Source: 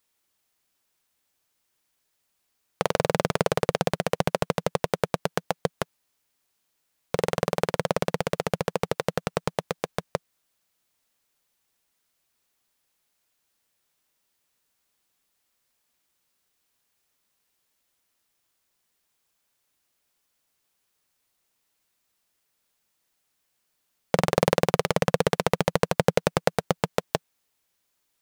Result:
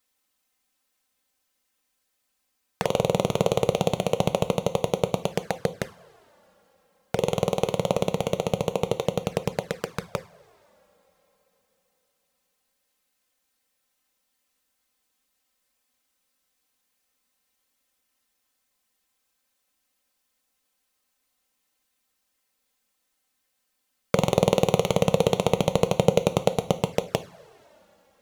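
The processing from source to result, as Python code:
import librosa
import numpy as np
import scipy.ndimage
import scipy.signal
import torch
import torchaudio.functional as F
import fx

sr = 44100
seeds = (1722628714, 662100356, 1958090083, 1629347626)

y = fx.rev_double_slope(x, sr, seeds[0], early_s=0.37, late_s=4.1, knee_db=-21, drr_db=9.0)
y = fx.env_flanger(y, sr, rest_ms=3.9, full_db=-25.0)
y = F.gain(torch.from_numpy(y), 2.5).numpy()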